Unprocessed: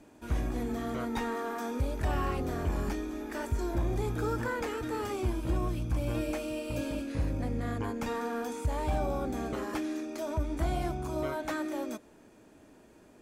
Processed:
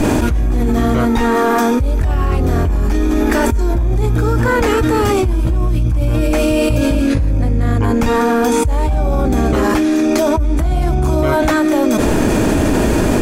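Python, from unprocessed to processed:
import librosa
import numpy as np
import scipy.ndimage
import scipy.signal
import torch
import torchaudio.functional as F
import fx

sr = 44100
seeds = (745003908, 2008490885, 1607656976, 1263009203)

y = fx.low_shelf(x, sr, hz=120.0, db=12.0)
y = fx.env_flatten(y, sr, amount_pct=100)
y = y * 10.0 ** (3.0 / 20.0)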